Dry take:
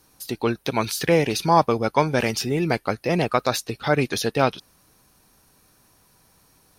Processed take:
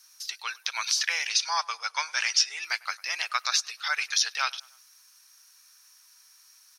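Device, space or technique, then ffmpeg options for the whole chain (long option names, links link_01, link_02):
headphones lying on a table: -filter_complex "[0:a]asettb=1/sr,asplit=3[link_01][link_02][link_03];[link_01]atrim=end=1.294[link_04];[link_02]atrim=start=1.29:end=2.64,asetpts=PTS-STARTPTS,afade=type=in:duration=0.004:curve=qsin,afade=type=out:start_time=1.346:duration=0.004:curve=qsin,lowpass=frequency=9400:width=0.5412,lowpass=frequency=9400:width=1.3066[link_05];[link_03]atrim=start=2.636[link_06];[link_04][link_05]acrossfade=duration=0.004:curve1=hsin:curve2=qsin[link_07];[link_07][link_06]acrossfade=duration=0.004:curve1=qsin:curve2=hsin,acrossover=split=6900[link_08][link_09];[link_09]acompressor=threshold=-53dB:ratio=4:attack=1:release=60[link_10];[link_08][link_10]amix=inputs=2:normalize=0,highpass=140,highpass=frequency=1300:width=0.5412,highpass=frequency=1300:width=1.3066,equalizer=frequency=5700:width_type=o:width=0.52:gain=11,asplit=2[link_11][link_12];[link_12]adelay=101,lowpass=frequency=2900:poles=1,volume=-23dB,asplit=2[link_13][link_14];[link_14]adelay=101,lowpass=frequency=2900:poles=1,volume=0.52,asplit=2[link_15][link_16];[link_16]adelay=101,lowpass=frequency=2900:poles=1,volume=0.52[link_17];[link_11][link_13][link_15][link_17]amix=inputs=4:normalize=0"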